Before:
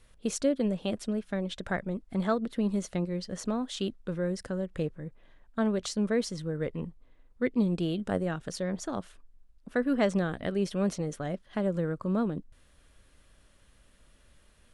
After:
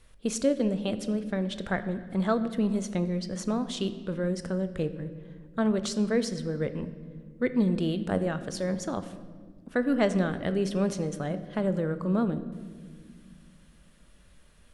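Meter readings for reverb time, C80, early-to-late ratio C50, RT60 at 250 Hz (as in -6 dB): 1.7 s, 14.0 dB, 12.5 dB, 3.0 s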